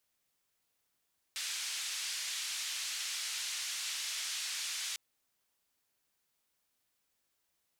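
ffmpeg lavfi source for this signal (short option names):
-f lavfi -i "anoisesrc=c=white:d=3.6:r=44100:seed=1,highpass=f=2200,lowpass=f=6700,volume=-26.9dB"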